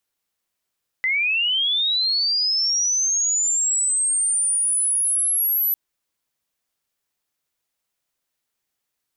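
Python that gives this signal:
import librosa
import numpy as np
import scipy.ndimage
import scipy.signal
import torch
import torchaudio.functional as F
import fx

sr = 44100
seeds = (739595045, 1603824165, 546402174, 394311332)

y = fx.chirp(sr, length_s=4.7, from_hz=2000.0, to_hz=12000.0, law='linear', from_db=-18.0, to_db=-17.5)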